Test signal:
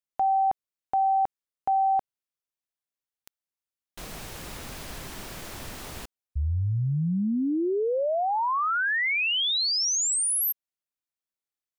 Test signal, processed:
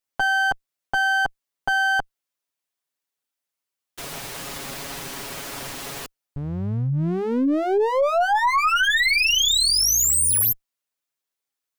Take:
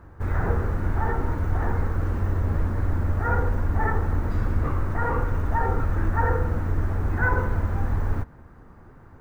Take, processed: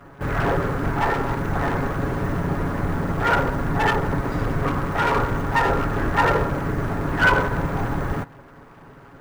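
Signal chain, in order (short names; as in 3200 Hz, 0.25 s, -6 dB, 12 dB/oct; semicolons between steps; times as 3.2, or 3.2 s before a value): minimum comb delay 7.2 ms; low shelf 130 Hz -11 dB; gain +8.5 dB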